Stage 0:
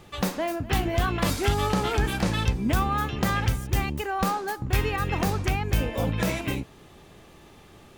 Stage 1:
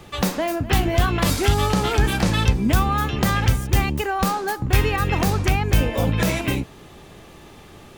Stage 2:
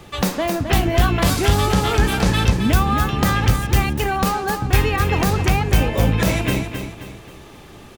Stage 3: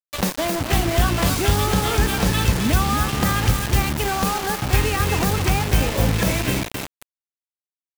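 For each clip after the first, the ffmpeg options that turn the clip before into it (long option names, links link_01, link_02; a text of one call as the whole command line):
ffmpeg -i in.wav -filter_complex "[0:a]acrossover=split=180|3000[link_01][link_02][link_03];[link_02]acompressor=threshold=-26dB:ratio=6[link_04];[link_01][link_04][link_03]amix=inputs=3:normalize=0,volume=6.5dB" out.wav
ffmpeg -i in.wav -af "aecho=1:1:266|532|798|1064|1330:0.398|0.159|0.0637|0.0255|0.0102,volume=1.5dB" out.wav
ffmpeg -i in.wav -af "acrusher=bits=3:mix=0:aa=0.000001,volume=-2.5dB" out.wav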